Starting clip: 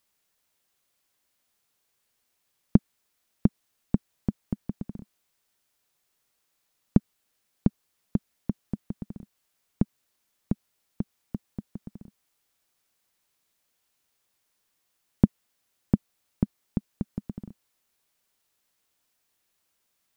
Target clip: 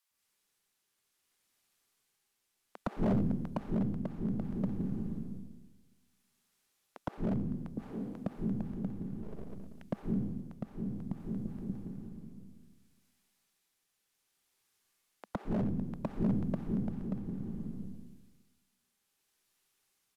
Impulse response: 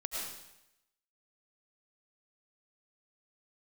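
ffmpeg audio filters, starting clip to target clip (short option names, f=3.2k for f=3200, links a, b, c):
-filter_complex "[0:a]asettb=1/sr,asplit=3[a][b][c];[a]atrim=end=6.974[d];[b]atrim=start=6.97:end=7.67,asetpts=PTS-STARTPTS,afade=t=in:d=0.004:c=qsin,afade=t=out:st=0.696:d=0.004:c=qsin,highpass=f=370:w=0.5412,highpass=f=370:w=1.3066[e];[c]atrim=start=7.666[f];[d][e]acrossfade=d=0.004:c1=hsin:c2=qsin[g];[g][f]acrossfade=d=0.004:c1=qsin:c2=hsin,acrossover=split=660[h][i];[h]adelay=110[j];[j][i]amix=inputs=2:normalize=0[k];[1:a]atrim=start_sample=2205,asetrate=27342,aresample=44100[l];[k][l]afir=irnorm=-1:irlink=0,aeval=exprs='0.15*(abs(mod(val(0)/0.15+3,4)-2)-1)':c=same,tremolo=f=0.61:d=0.33,asplit=3[m][n][o];[m]afade=t=out:st=9.22:d=0.02[p];[n]aeval=exprs='abs(val(0))':c=same,afade=t=in:st=9.22:d=0.02,afade=t=out:st=9.82:d=0.02[q];[o]afade=t=in:st=9.82:d=0.02[r];[p][q][r]amix=inputs=3:normalize=0,volume=-6dB"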